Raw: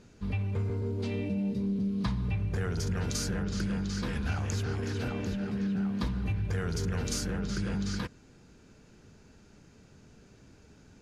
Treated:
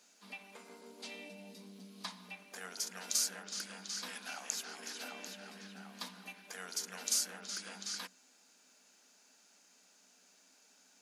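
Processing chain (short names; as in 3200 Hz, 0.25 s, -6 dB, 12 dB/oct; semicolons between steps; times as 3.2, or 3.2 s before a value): rippled Chebyshev high-pass 180 Hz, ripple 9 dB; differentiator; gain +14 dB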